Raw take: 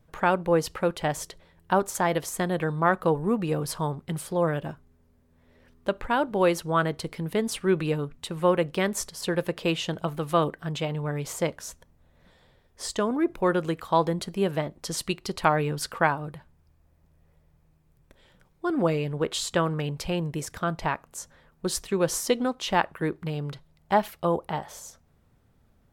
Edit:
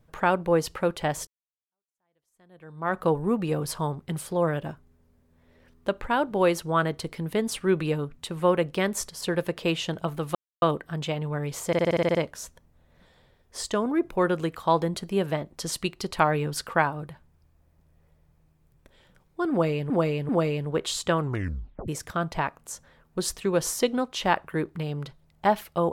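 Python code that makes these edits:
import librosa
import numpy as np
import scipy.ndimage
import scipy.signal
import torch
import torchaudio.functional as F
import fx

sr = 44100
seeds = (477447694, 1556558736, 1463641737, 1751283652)

y = fx.edit(x, sr, fx.fade_in_span(start_s=1.27, length_s=1.71, curve='exp'),
    fx.insert_silence(at_s=10.35, length_s=0.27),
    fx.stutter(start_s=11.4, slice_s=0.06, count=9),
    fx.repeat(start_s=18.76, length_s=0.39, count=3),
    fx.tape_stop(start_s=19.66, length_s=0.69), tone=tone)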